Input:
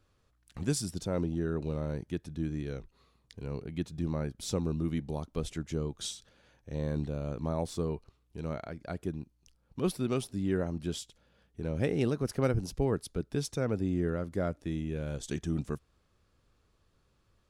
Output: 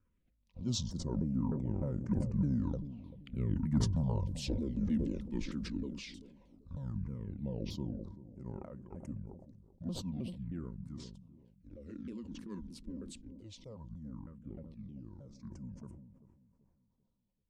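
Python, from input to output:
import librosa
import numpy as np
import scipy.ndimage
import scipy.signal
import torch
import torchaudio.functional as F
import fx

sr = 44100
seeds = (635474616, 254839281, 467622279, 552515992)

p1 = fx.pitch_ramps(x, sr, semitones=-10.0, every_ms=308)
p2 = fx.doppler_pass(p1, sr, speed_mps=5, closest_m=4.4, pass_at_s=3.69)
p3 = fx.low_shelf(p2, sr, hz=99.0, db=8.0)
p4 = 10.0 ** (-27.0 / 20.0) * np.tanh(p3 / 10.0 ** (-27.0 / 20.0))
p5 = fx.phaser_stages(p4, sr, stages=4, low_hz=110.0, high_hz=4000.0, hz=0.14, feedback_pct=5)
p6 = fx.small_body(p5, sr, hz=(210.0, 530.0, 950.0), ring_ms=35, db=12)
p7 = p6 + fx.echo_bbd(p6, sr, ms=388, stages=2048, feedback_pct=39, wet_db=-15.0, dry=0)
y = fx.sustainer(p7, sr, db_per_s=46.0)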